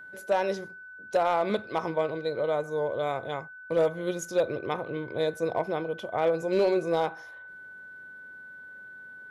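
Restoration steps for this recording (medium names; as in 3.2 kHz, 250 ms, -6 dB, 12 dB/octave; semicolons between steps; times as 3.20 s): clip repair -17 dBFS; band-stop 1.5 kHz, Q 30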